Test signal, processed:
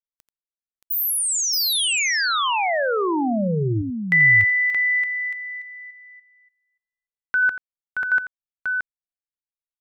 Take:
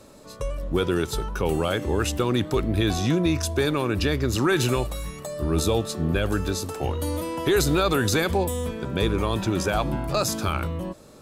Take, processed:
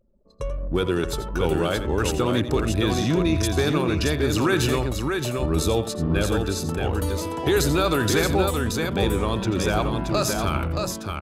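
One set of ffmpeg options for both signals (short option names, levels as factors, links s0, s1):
-af "anlmdn=3.98,aecho=1:1:86|625:0.251|0.596"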